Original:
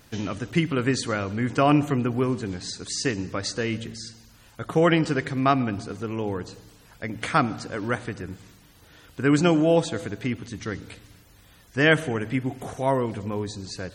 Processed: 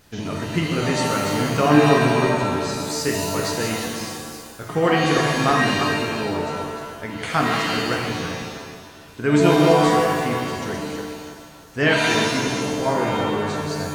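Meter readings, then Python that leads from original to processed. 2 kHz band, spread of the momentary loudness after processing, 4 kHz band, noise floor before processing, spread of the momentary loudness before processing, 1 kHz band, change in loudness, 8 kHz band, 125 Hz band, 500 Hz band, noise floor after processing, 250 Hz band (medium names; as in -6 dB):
+5.5 dB, 16 LU, +7.5 dB, -54 dBFS, 16 LU, +7.0 dB, +4.5 dB, +7.0 dB, +3.0 dB, +5.0 dB, -42 dBFS, +3.5 dB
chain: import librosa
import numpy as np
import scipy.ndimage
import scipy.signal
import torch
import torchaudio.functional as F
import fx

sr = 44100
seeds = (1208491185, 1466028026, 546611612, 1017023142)

y = fx.reverse_delay_fb(x, sr, ms=162, feedback_pct=55, wet_db=-5.5)
y = fx.rev_shimmer(y, sr, seeds[0], rt60_s=1.1, semitones=7, shimmer_db=-2, drr_db=1.5)
y = y * librosa.db_to_amplitude(-1.0)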